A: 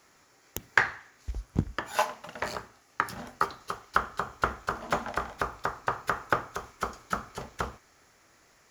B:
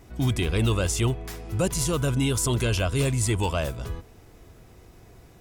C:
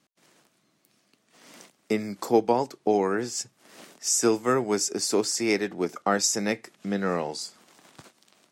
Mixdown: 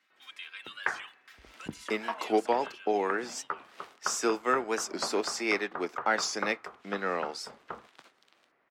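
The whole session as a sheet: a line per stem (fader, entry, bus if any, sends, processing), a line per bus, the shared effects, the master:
-7.5 dB, 0.10 s, no send, LPF 2800 Hz
2.32 s -9.5 dB -> 3.09 s -22 dB, 0.00 s, no send, Chebyshev high-pass 1500 Hz, order 3; comb 3.8 ms, depth 86%
-5.5 dB, 0.00 s, no send, tilt +3 dB/oct; sample leveller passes 1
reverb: off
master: three-band isolator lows -20 dB, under 180 Hz, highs -20 dB, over 3800 Hz; record warp 45 rpm, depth 160 cents

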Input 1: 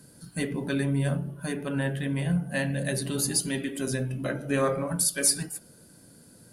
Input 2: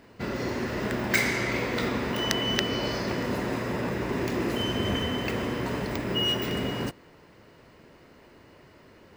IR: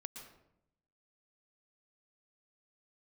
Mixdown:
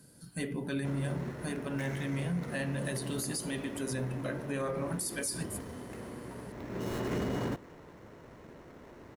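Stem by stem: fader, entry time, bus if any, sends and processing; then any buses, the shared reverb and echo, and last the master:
-5.0 dB, 0.00 s, no send, dry
+2.5 dB, 0.65 s, no send, median filter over 15 samples; notch 4800 Hz, Q 15; auto duck -16 dB, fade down 1.55 s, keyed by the first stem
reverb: off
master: limiter -25.5 dBFS, peak gain reduction 9 dB

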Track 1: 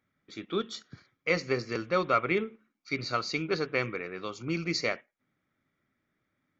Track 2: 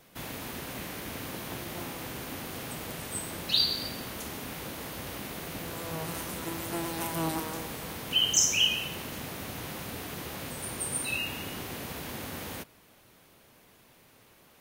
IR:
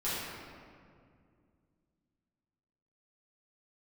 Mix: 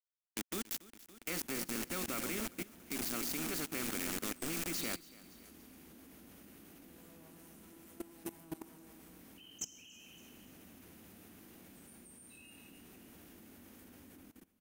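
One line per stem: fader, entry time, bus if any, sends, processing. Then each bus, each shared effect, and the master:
-0.5 dB, 0.00 s, no send, echo send -10 dB, sample gate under -35 dBFS; spectral compressor 2:1
-6.0 dB, 1.25 s, send -10 dB, echo send -6 dB, compressor 2:1, threshold -36 dBFS, peak gain reduction 9.5 dB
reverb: on, RT60 2.2 s, pre-delay 5 ms
echo: feedback echo 0.282 s, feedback 40%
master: graphic EQ 125/250/500/1000/2000/4000 Hz -11/+8/-6/-7/-3/-7 dB; level quantiser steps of 19 dB

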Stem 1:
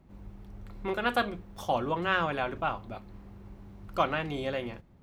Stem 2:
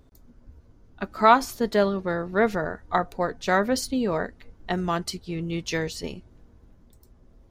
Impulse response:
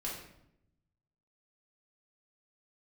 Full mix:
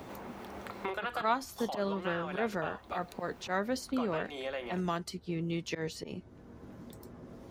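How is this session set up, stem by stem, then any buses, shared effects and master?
0.0 dB, 0.00 s, no send, HPF 480 Hz 12 dB/oct; compressor 3:1, threshold -41 dBFS, peak gain reduction 14.5 dB
-8.0 dB, 0.00 s, no send, auto swell 0.107 s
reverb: off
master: HPF 66 Hz; three-band squash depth 70%

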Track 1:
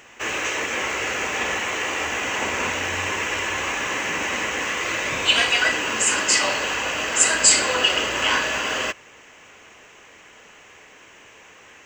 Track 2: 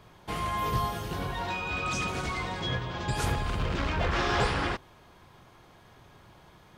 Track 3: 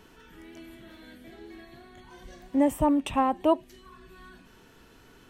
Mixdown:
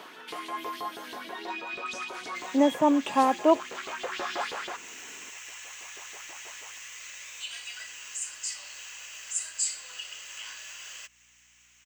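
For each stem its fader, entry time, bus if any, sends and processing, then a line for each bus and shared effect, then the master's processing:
-13.5 dB, 2.15 s, no send, differentiator; hum 60 Hz, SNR 32 dB
+2.0 dB, 0.00 s, no send, LFO high-pass saw up 6.2 Hz 350–4400 Hz; auto duck -9 dB, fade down 0.25 s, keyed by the third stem
+2.5 dB, 0.00 s, no send, HPF 180 Hz 24 dB/oct; tone controls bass -6 dB, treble -12 dB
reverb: off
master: mismatched tape noise reduction encoder only

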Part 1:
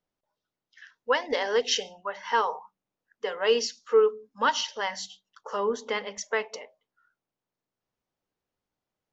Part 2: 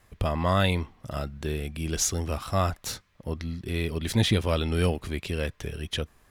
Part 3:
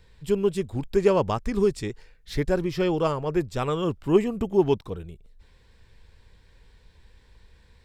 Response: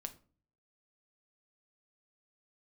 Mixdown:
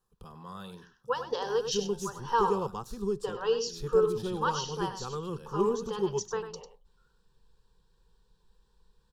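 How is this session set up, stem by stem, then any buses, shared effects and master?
-1.0 dB, 0.00 s, no send, echo send -9.5 dB, tremolo 2.1 Hz, depth 35%
-16.5 dB, 0.00 s, no send, echo send -12.5 dB, dry
-11.0 dB, 1.45 s, send -6.5 dB, no echo send, dry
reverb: on, RT60 0.40 s, pre-delay 6 ms
echo: echo 98 ms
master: fixed phaser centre 420 Hz, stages 8

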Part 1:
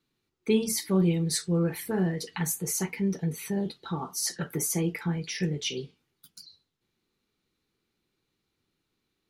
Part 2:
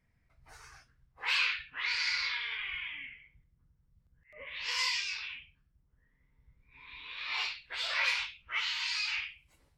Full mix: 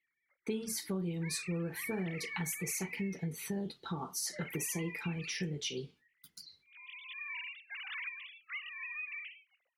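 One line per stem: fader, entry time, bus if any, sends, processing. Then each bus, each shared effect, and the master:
-3.0 dB, 0.00 s, no send, gate with hold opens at -52 dBFS
+1.0 dB, 0.00 s, no send, sine-wave speech; bell 920 Hz -12.5 dB 1.1 oct; compressor 6:1, threshold -41 dBFS, peak gain reduction 15 dB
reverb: off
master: compressor 5:1, threshold -34 dBFS, peak gain reduction 11.5 dB

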